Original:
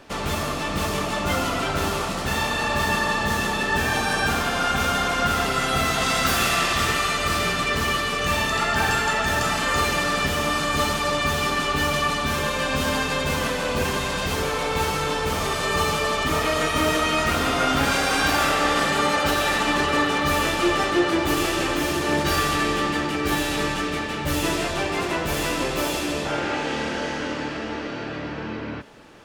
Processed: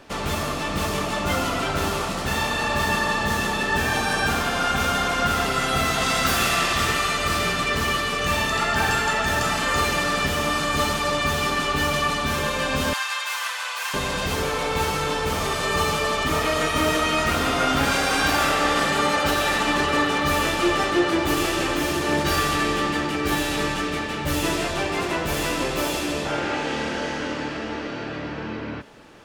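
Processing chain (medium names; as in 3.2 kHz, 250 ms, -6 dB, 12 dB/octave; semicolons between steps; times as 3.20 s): 12.93–13.94 s: high-pass 960 Hz 24 dB/octave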